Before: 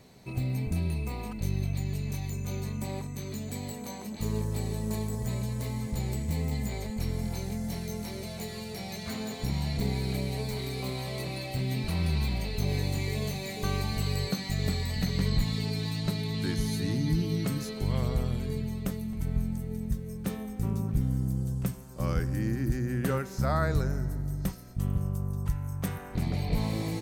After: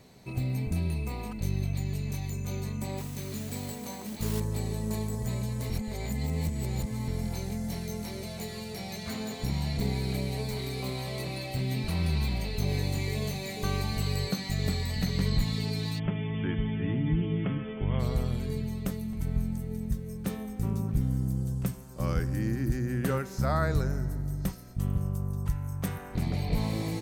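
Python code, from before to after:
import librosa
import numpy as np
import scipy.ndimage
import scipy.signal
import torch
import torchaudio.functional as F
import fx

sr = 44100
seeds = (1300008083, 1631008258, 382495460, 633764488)

y = fx.mod_noise(x, sr, seeds[0], snr_db=12, at=(2.97, 4.4))
y = fx.brickwall_lowpass(y, sr, high_hz=3500.0, at=(15.98, 17.99), fade=0.02)
y = fx.edit(y, sr, fx.reverse_span(start_s=5.7, length_s=1.38), tone=tone)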